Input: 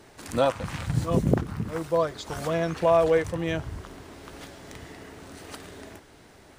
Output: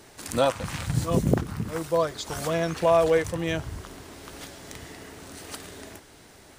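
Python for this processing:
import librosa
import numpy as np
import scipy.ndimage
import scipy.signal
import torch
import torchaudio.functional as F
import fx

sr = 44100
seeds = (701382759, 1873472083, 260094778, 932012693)

y = fx.high_shelf(x, sr, hz=4000.0, db=8.0)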